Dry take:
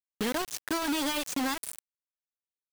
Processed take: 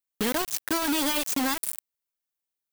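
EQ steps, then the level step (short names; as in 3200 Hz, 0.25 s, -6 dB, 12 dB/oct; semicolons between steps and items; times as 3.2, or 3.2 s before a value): high shelf 11000 Hz +9.5 dB; +3.0 dB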